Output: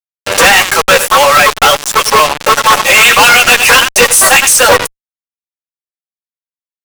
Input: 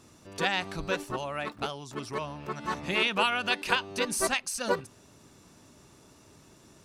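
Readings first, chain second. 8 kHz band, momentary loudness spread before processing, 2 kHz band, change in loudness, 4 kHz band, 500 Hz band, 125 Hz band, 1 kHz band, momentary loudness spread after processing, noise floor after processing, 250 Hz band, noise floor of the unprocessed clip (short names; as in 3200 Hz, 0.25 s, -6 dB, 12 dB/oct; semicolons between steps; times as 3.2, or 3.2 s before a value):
+28.0 dB, 10 LU, +24.5 dB, +24.5 dB, +23.5 dB, +21.5 dB, +14.5 dB, +24.5 dB, 5 LU, under -85 dBFS, +13.0 dB, -57 dBFS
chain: in parallel at -3 dB: compressor 6:1, threshold -35 dBFS, peak gain reduction 14 dB; on the sum: steep high-pass 410 Hz 96 dB/oct; comb 3.7 ms, depth 54%; reverb removal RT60 0.89 s; bell 4300 Hz -11 dB 0.64 oct; echo 97 ms -17.5 dB; dynamic EQ 590 Hz, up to -8 dB, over -42 dBFS, Q 1.1; flange 1.5 Hz, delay 7.7 ms, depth 8 ms, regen +25%; fuzz box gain 54 dB, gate -47 dBFS; maximiser +18.5 dB; gain -1 dB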